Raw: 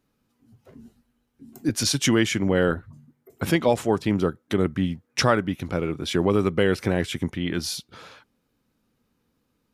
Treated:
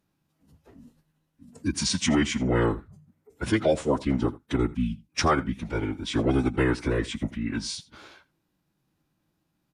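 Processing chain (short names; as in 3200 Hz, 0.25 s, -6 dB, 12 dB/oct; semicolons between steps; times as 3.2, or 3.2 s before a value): spectral gain 4.75–5.12, 440–2200 Hz -14 dB; formant-preserving pitch shift -7.5 st; echo 83 ms -20 dB; gain -2 dB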